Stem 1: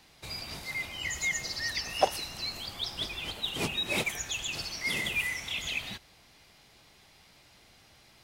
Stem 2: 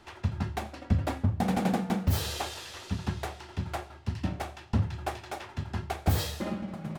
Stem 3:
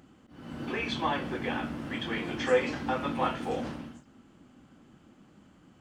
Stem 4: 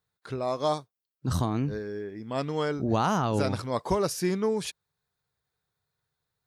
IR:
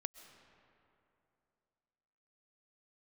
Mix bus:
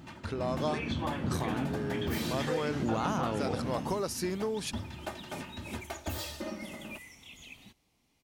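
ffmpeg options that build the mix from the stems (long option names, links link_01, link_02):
-filter_complex "[0:a]equalizer=frequency=250:width_type=o:width=0.67:gain=7,equalizer=frequency=630:width_type=o:width=0.67:gain=-4,equalizer=frequency=1600:width_type=o:width=0.67:gain=-10,equalizer=frequency=4000:width_type=o:width=0.67:gain=-6,adelay=1750,volume=-12.5dB[link_01];[1:a]aecho=1:1:3.3:0.8,acontrast=86,volume=-12.5dB[link_02];[2:a]equalizer=frequency=120:width=0.66:gain=10.5,volume=1dB[link_03];[3:a]volume=2dB[link_04];[link_01][link_03]amix=inputs=2:normalize=0,bandreject=frequency=4900:width=18,acompressor=threshold=-32dB:ratio=6,volume=0dB[link_05];[link_02][link_04]amix=inputs=2:normalize=0,lowshelf=frequency=130:gain=-8.5,acompressor=threshold=-33dB:ratio=2.5,volume=0dB[link_06];[link_05][link_06]amix=inputs=2:normalize=0"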